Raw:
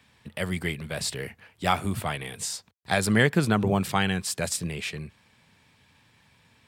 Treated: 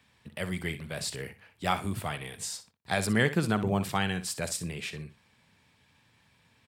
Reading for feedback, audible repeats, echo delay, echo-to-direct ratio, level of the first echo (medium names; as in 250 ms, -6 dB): 17%, 2, 60 ms, -13.0 dB, -13.0 dB